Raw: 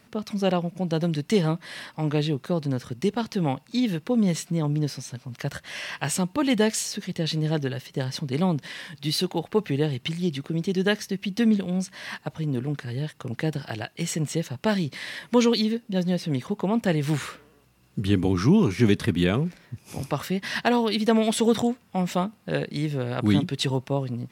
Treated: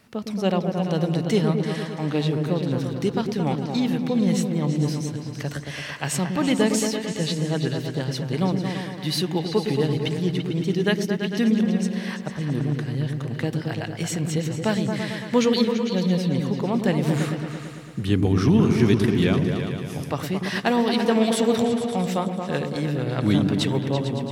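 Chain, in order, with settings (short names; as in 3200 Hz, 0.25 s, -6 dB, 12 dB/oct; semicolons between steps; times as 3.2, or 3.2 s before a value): repeats that get brighter 0.112 s, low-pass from 400 Hz, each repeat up 2 oct, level -3 dB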